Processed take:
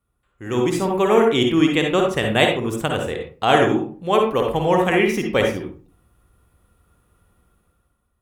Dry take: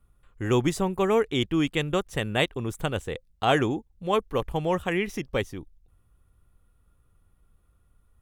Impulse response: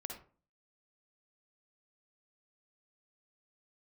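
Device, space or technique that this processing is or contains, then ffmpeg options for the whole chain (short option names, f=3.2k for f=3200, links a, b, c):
far laptop microphone: -filter_complex "[1:a]atrim=start_sample=2205[a];[0:a][a]afir=irnorm=-1:irlink=0,highpass=f=160:p=1,dynaudnorm=f=170:g=9:m=13.5dB,asettb=1/sr,asplit=3[b][c][d];[b]atrim=end=1.604[e];[c]atrim=start=1.6:end=2.23,asetpts=PTS-STARTPTS,afade=t=in:d=0.004:c=qsin,afade=t=out:st=0.626:d=0.004:c=qsin,highshelf=f=10k:g=-5.5[f];[d]atrim=start=2.226[g];[e][f]acrossfade=d=0.004:c1=hsin:c2=qsin[h];[h][g]acrossfade=d=0.004:c1=qsin:c2=hsin"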